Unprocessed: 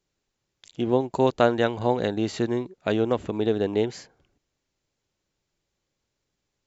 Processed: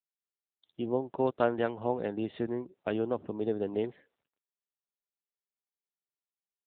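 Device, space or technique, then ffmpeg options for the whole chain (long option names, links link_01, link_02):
mobile call with aggressive noise cancelling: -af "highpass=frequency=140:poles=1,afftdn=noise_reduction=24:noise_floor=-46,volume=-6.5dB" -ar 8000 -c:a libopencore_amrnb -b:a 7950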